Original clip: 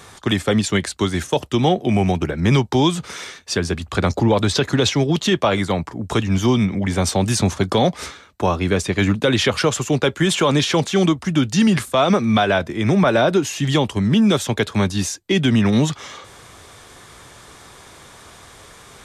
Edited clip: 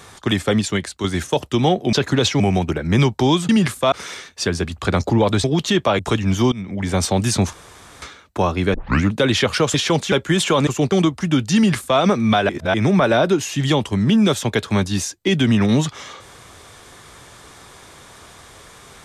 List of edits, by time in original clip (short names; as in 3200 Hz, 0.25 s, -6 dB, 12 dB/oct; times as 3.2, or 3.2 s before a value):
0.52–1.04 fade out linear, to -6.5 dB
4.54–5.01 move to 1.93
5.56–6.03 cut
6.56–6.98 fade in, from -18.5 dB
7.57–8.06 room tone
8.78 tape start 0.30 s
9.78–10.03 swap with 10.58–10.96
11.6–12.03 copy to 3.02
12.53–12.78 reverse